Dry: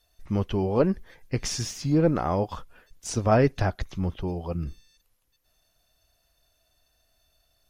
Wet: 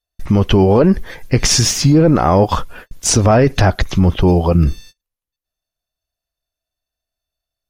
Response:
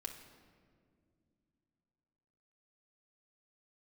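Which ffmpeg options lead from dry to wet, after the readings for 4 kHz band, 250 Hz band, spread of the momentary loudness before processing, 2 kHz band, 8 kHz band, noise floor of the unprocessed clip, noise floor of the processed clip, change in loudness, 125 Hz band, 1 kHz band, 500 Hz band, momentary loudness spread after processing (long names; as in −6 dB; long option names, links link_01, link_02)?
+18.0 dB, +13.0 dB, 12 LU, +12.5 dB, +18.0 dB, −70 dBFS, below −85 dBFS, +13.0 dB, +14.0 dB, +12.0 dB, +11.0 dB, 7 LU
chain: -filter_complex "[0:a]agate=range=-35dB:threshold=-54dB:ratio=16:detection=peak,asplit=2[link_01][link_02];[link_02]asoftclip=type=tanh:threshold=-19dB,volume=-12dB[link_03];[link_01][link_03]amix=inputs=2:normalize=0,alimiter=level_in=20dB:limit=-1dB:release=50:level=0:latency=1,volume=-2.5dB"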